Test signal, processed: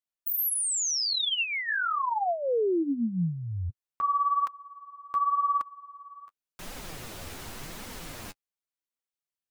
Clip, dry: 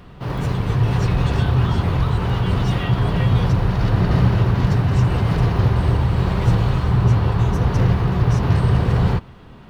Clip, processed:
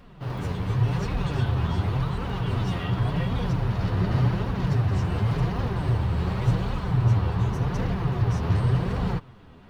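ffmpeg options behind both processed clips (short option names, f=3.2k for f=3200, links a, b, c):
-af "flanger=delay=3.5:depth=8.8:regen=17:speed=0.89:shape=triangular,volume=-3.5dB"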